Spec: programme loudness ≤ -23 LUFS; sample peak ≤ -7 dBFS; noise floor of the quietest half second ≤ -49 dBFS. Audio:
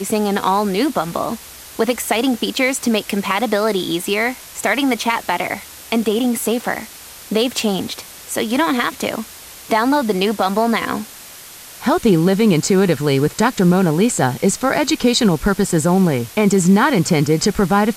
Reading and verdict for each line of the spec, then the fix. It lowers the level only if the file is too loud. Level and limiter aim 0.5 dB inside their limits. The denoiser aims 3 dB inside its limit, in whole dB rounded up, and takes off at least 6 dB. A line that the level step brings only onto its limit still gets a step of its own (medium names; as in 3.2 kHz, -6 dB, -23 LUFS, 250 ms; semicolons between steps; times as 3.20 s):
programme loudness -17.5 LUFS: fail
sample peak -4.0 dBFS: fail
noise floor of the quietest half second -38 dBFS: fail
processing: noise reduction 8 dB, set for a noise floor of -38 dBFS; trim -6 dB